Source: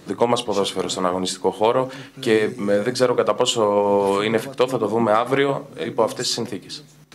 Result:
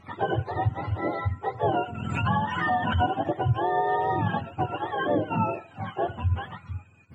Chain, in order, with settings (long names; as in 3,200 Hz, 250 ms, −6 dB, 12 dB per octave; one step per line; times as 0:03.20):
frequency axis turned over on the octave scale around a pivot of 610 Hz
0:01.65–0:03.06: background raised ahead of every attack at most 35 dB per second
level −6 dB